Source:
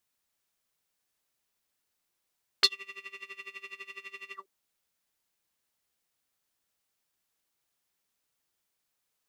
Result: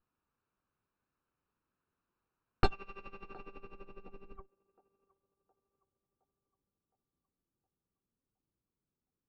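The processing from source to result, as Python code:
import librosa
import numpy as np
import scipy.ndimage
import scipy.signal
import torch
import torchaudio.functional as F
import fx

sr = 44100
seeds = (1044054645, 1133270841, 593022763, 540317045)

y = fx.lower_of_two(x, sr, delay_ms=0.74)
y = fx.echo_banded(y, sr, ms=715, feedback_pct=58, hz=780.0, wet_db=-19.5)
y = fx.filter_sweep_lowpass(y, sr, from_hz=1100.0, to_hz=420.0, start_s=2.97, end_s=4.46, q=0.71)
y = y * librosa.db_to_amplitude(7.0)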